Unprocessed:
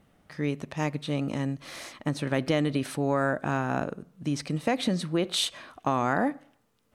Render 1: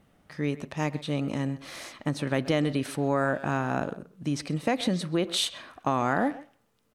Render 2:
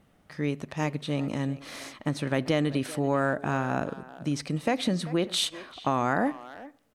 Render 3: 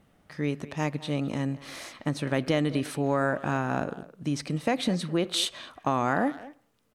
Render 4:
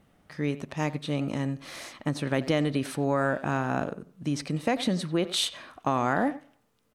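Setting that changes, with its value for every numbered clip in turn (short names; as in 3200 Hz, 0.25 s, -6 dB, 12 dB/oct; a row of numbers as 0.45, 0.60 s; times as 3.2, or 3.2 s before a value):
speakerphone echo, time: 130, 390, 210, 90 ms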